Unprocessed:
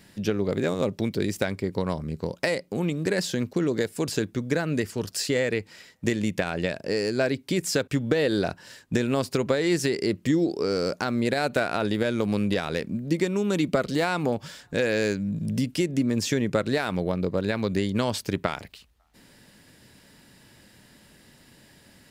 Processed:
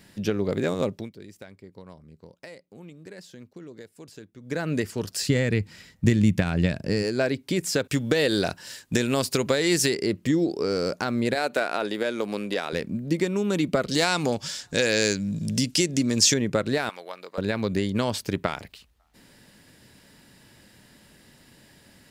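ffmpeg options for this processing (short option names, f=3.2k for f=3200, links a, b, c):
-filter_complex "[0:a]asplit=3[a][b][c];[a]afade=t=out:st=5.21:d=0.02[d];[b]asubboost=boost=4.5:cutoff=220,afade=t=in:st=5.21:d=0.02,afade=t=out:st=7.02:d=0.02[e];[c]afade=t=in:st=7.02:d=0.02[f];[d][e][f]amix=inputs=3:normalize=0,asettb=1/sr,asplit=3[g][h][i];[g]atrim=end=7.844[j];[h]atrim=start=7.84:end=9.94,asetpts=PTS-STARTPTS,afade=t=in:d=0.004:c=qsin,afade=t=out:st=2.096:d=0.004:c=qsin,highshelf=f=2.9k:g=10[k];[i]atrim=start=9.936[l];[j][k]acrossfade=d=0.004:c1=hsin:c2=qsin[m];[m][l]acrossfade=d=0.004:c1=qsin:c2=hsin,asettb=1/sr,asplit=3[n][o][p];[n]atrim=end=11.354[q];[o]atrim=start=11.35:end=12.73,asetpts=PTS-STARTPTS,afade=t=in:d=0.004:c=qsin,afade=t=out:st=1.376:d=0.004:c=qsin,highpass=310[r];[p]atrim=start=12.726[s];[q][r]acrossfade=d=0.004:c1=hsin:c2=qsin[t];[t][s]acrossfade=d=0.004:c1=qsin:c2=hsin,asettb=1/sr,asplit=3[u][v][w];[u]atrim=end=13.914[x];[v]atrim=start=13.91:end=16.34,asetpts=PTS-STARTPTS,afade=t=in:d=0.004:c=qsin,afade=t=out:st=2.426:d=0.004:c=qsin,equalizer=f=6.1k:w=0.65:g=14[y];[w]atrim=start=16.336[z];[x][y]acrossfade=d=0.004:c1=hsin:c2=qsin[aa];[aa][z]acrossfade=d=0.004:c1=qsin:c2=hsin,asettb=1/sr,asplit=3[ab][ac][ad];[ab]atrim=end=16.894[ae];[ac]atrim=start=16.89:end=17.38,asetpts=PTS-STARTPTS,afade=t=in:d=0.004:c=qsin,afade=t=out:st=0.486:d=0.004:c=qsin,highpass=1k[af];[ad]atrim=start=17.376[ag];[ae][af]acrossfade=d=0.004:c1=hsin:c2=qsin[ah];[ah][ag]acrossfade=d=0.004:c1=qsin:c2=hsin,asplit=3[ai][aj][ak];[ai]atrim=end=1.11,asetpts=PTS-STARTPTS,afade=t=out:st=0.84:d=0.27:silence=0.125893[al];[aj]atrim=start=1.11:end=4.4,asetpts=PTS-STARTPTS,volume=-18dB[am];[ak]atrim=start=4.4,asetpts=PTS-STARTPTS,afade=t=in:d=0.27:silence=0.125893[an];[al][am][an]concat=n=3:v=0:a=1"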